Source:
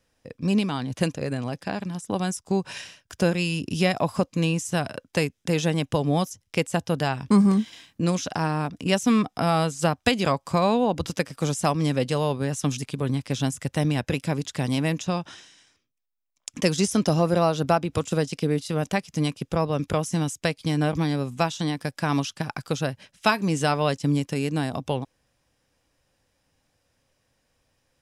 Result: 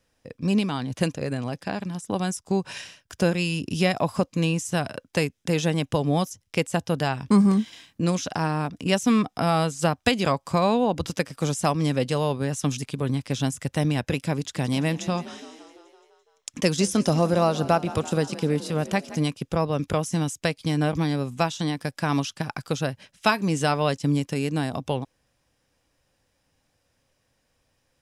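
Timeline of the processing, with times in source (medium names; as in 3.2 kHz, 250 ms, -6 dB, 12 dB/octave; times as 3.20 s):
14.38–19.24 s: frequency-shifting echo 169 ms, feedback 64%, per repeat +39 Hz, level -16.5 dB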